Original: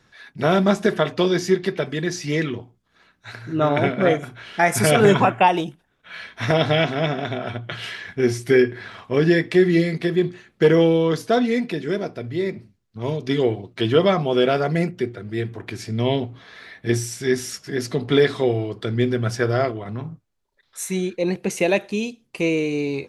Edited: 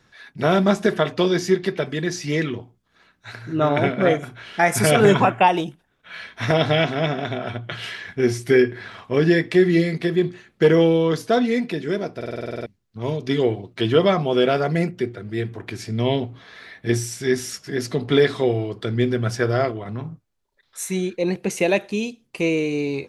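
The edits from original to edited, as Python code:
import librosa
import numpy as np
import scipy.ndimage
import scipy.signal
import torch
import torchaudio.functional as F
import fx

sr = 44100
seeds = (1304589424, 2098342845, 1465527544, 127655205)

y = fx.edit(x, sr, fx.stutter_over(start_s=12.16, slice_s=0.05, count=10), tone=tone)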